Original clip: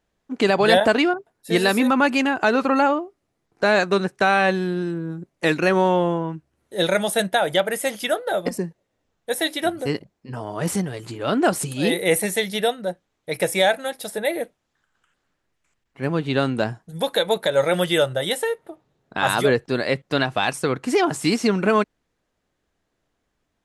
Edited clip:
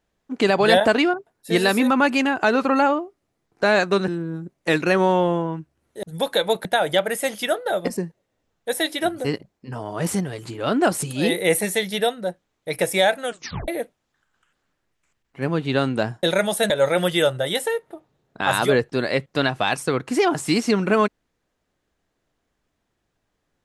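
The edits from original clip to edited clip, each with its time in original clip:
4.08–4.84 cut
6.79–7.26 swap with 16.84–17.46
13.85 tape stop 0.44 s

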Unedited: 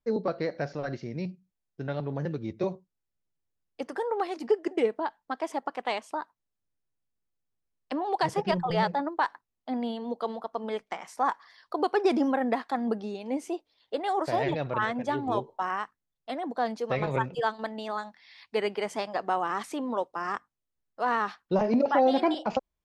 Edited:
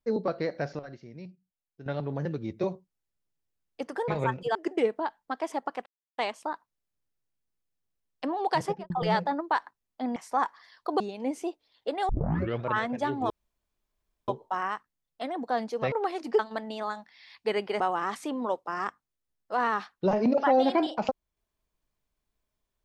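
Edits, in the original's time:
0.79–1.86 gain -10 dB
4.08–4.55 swap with 17–17.47
5.86 insert silence 0.32 s
8.32–8.58 studio fade out
9.84–11.02 cut
11.86–13.06 cut
14.15 tape start 0.55 s
15.36 insert room tone 0.98 s
18.88–19.28 cut

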